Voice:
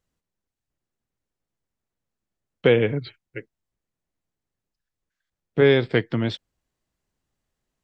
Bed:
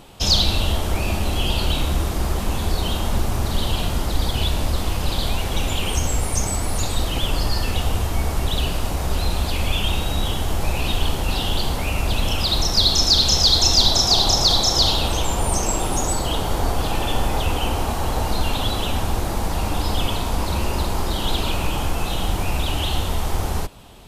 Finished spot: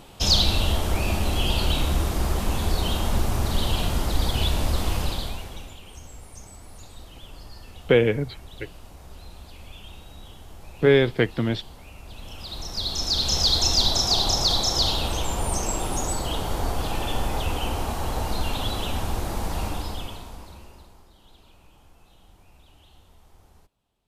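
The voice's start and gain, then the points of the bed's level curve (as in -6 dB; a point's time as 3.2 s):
5.25 s, -0.5 dB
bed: 4.99 s -2 dB
5.81 s -21.5 dB
12.03 s -21.5 dB
13.4 s -5 dB
19.64 s -5 dB
21.11 s -32 dB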